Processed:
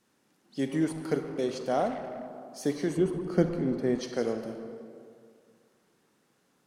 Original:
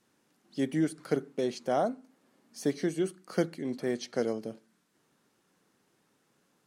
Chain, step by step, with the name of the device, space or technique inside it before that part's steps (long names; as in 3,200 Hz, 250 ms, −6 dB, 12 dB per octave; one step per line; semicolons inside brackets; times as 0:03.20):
saturated reverb return (on a send at −3.5 dB: convolution reverb RT60 2.1 s, pre-delay 28 ms + soft clipping −29.5 dBFS, distortion −12 dB)
0:02.97–0:03.98: on the sum: spectral tilt −2.5 dB per octave